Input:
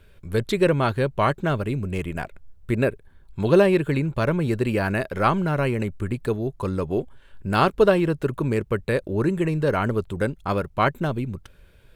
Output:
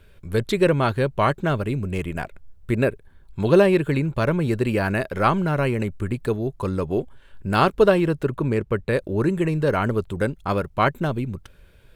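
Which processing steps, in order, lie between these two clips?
0:08.23–0:08.93: high-shelf EQ 4,800 Hz −7.5 dB
level +1 dB

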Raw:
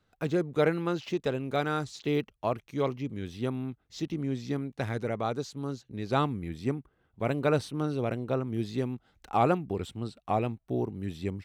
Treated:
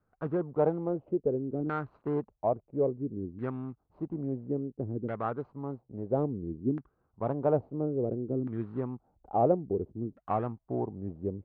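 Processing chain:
running median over 25 samples
auto-filter low-pass saw down 0.59 Hz 290–1,600 Hz
level −3.5 dB

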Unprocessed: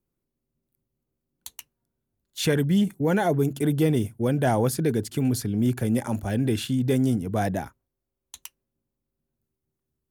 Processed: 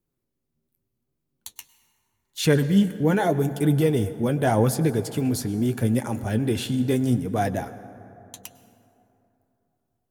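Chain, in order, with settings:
flanger 0.82 Hz, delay 5.9 ms, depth 7.4 ms, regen +47%
convolution reverb RT60 3.1 s, pre-delay 92 ms, DRR 14 dB
level +5 dB

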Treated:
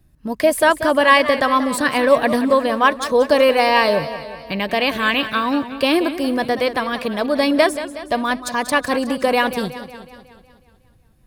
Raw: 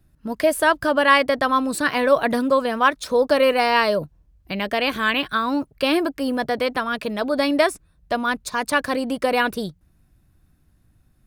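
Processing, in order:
notch filter 1,400 Hz, Q 8.2
feedback echo with a swinging delay time 184 ms, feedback 56%, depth 114 cents, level −12.5 dB
level +3 dB

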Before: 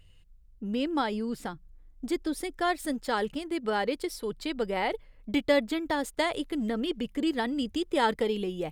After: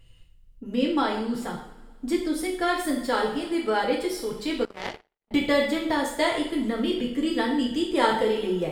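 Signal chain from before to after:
coupled-rooms reverb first 0.58 s, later 2 s, from −18 dB, DRR −2.5 dB
0:04.65–0:05.31: power curve on the samples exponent 3

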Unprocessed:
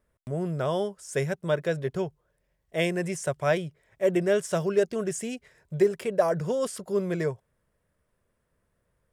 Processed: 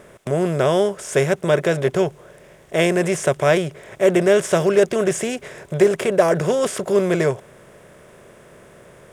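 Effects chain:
compressor on every frequency bin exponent 0.6
level +5.5 dB

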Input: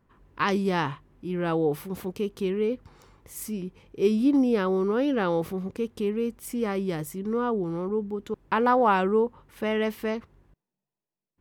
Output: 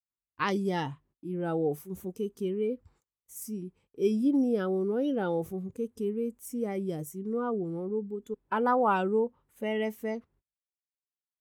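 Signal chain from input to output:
noise reduction from a noise print of the clip's start 13 dB
noise gate −57 dBFS, range −31 dB
level −4 dB

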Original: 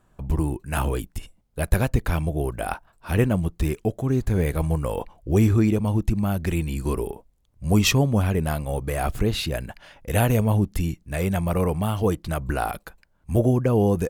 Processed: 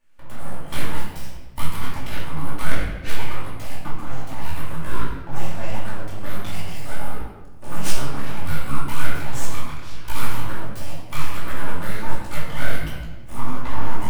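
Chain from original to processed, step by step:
sub-octave generator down 1 octave, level +1 dB
camcorder AGC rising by 27 dB per second
Chebyshev high-pass filter 570 Hz, order 2
full-wave rectification
rectangular room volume 830 cubic metres, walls mixed, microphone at 2.5 metres
micro pitch shift up and down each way 48 cents
level −1.5 dB

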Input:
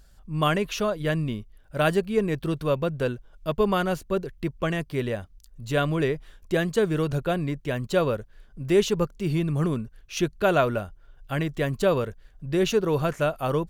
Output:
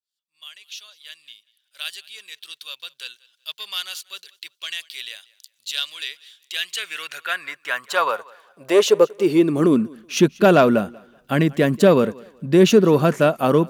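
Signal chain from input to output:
fade in at the beginning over 3.88 s
in parallel at −6 dB: sine wavefolder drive 5 dB, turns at −9 dBFS
on the sum: high-pass filter sweep 3,600 Hz → 210 Hz, 0:06.37–0:10.03
feedback echo with a high-pass in the loop 188 ms, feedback 28%, high-pass 200 Hz, level −23 dB

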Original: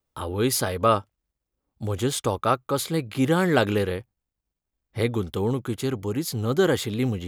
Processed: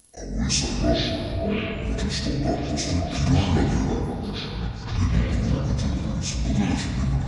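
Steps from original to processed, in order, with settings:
phase-vocoder pitch shift without resampling −11 semitones
bass and treble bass −6 dB, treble +14 dB
reversed playback
upward compression, threshold −33 dBFS
reversed playback
delay with pitch and tempo change per echo 185 ms, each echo −7 semitones, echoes 2, each echo −6 dB
noise gate with hold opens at −33 dBFS
parametric band 84 Hz +11 dB 3 octaves
echo through a band-pass that steps 529 ms, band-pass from 740 Hz, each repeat 0.7 octaves, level −5.5 dB
on a send at −1.5 dB: convolution reverb RT60 2.2 s, pre-delay 3 ms
on the sum: background raised ahead of every attack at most 77 dB per second
level −6 dB

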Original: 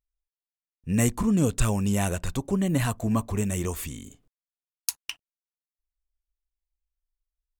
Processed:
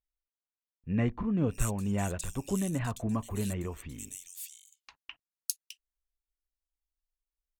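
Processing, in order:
multiband delay without the direct sound lows, highs 610 ms, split 3,000 Hz
amplitude tremolo 2 Hz, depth 29%
level −5 dB

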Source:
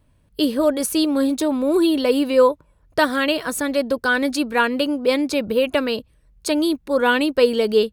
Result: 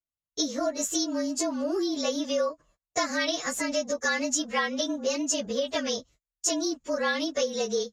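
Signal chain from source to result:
partials spread apart or drawn together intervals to 108%
low-pass with resonance 6,900 Hz, resonance Q 13
noise gate −47 dBFS, range −33 dB
downward compressor, threshold −22 dBFS, peak gain reduction 11 dB
low-shelf EQ 290 Hz −9.5 dB

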